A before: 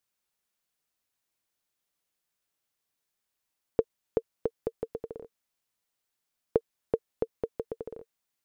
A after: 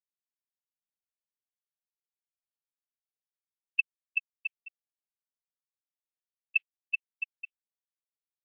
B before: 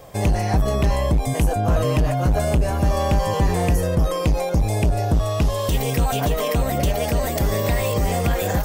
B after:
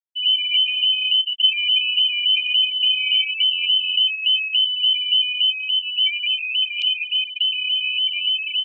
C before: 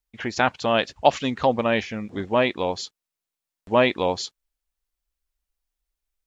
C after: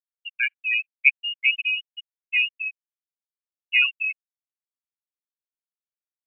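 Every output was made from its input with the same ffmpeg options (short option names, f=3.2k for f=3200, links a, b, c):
-af "aecho=1:1:202:0.178,lowpass=f=2.6k:t=q:w=0.5098,lowpass=f=2.6k:t=q:w=0.6013,lowpass=f=2.6k:t=q:w=0.9,lowpass=f=2.6k:t=q:w=2.563,afreqshift=-3100,afftfilt=real='re*gte(hypot(re,im),0.447)':imag='im*gte(hypot(re,im),0.447)':win_size=1024:overlap=0.75" -ar 22050 -c:a aac -b:a 24k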